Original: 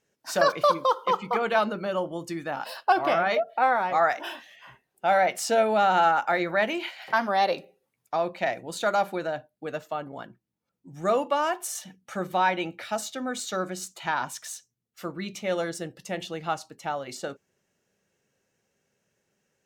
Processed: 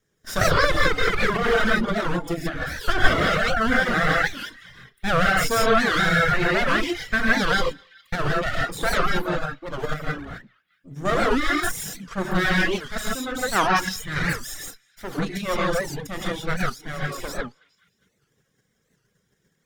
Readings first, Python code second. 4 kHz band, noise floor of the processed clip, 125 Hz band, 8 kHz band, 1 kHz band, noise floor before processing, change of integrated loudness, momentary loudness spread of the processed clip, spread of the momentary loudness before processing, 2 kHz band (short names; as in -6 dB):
+8.0 dB, -71 dBFS, +13.5 dB, +4.0 dB, -0.5 dB, -80 dBFS, +3.5 dB, 12 LU, 14 LU, +9.0 dB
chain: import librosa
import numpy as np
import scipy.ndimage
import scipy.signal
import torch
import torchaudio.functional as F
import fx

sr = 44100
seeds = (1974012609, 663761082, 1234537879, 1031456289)

p1 = fx.lower_of_two(x, sr, delay_ms=0.57)
p2 = fx.spec_box(p1, sr, start_s=13.57, length_s=0.23, low_hz=720.0, high_hz=6400.0, gain_db=11)
p3 = p2 + fx.echo_banded(p2, sr, ms=205, feedback_pct=46, hz=2900.0, wet_db=-16.0, dry=0)
p4 = fx.rev_gated(p3, sr, seeds[0], gate_ms=190, shape='rising', drr_db=-4.0)
p5 = fx.dereverb_blind(p4, sr, rt60_s=0.6)
p6 = fx.low_shelf(p5, sr, hz=130.0, db=8.0)
p7 = fx.level_steps(p6, sr, step_db=14)
p8 = p6 + (p7 * librosa.db_to_amplitude(-1.5))
p9 = fx.notch(p8, sr, hz=950.0, q=24.0)
p10 = fx.record_warp(p9, sr, rpm=78.0, depth_cents=250.0)
y = p10 * librosa.db_to_amplitude(-1.0)